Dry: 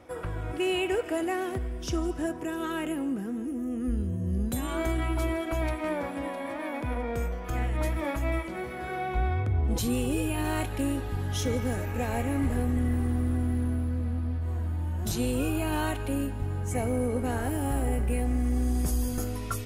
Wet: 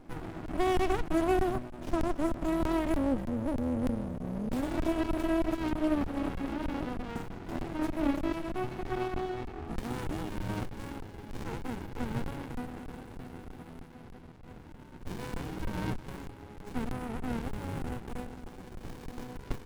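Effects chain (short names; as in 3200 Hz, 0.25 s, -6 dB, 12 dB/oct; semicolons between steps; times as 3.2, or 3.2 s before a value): high-pass sweep 300 Hz -> 660 Hz, 8.11–10.78; crackling interface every 0.31 s, samples 1024, zero, from 0.46; running maximum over 65 samples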